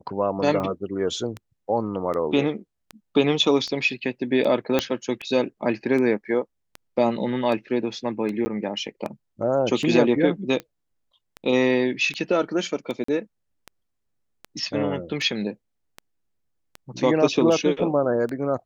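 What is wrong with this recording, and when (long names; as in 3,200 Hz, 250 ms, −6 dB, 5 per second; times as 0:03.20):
scratch tick 78 rpm −19 dBFS
0:04.79: click −6 dBFS
0:08.45–0:08.46: drop-out 10 ms
0:13.04–0:13.08: drop-out 44 ms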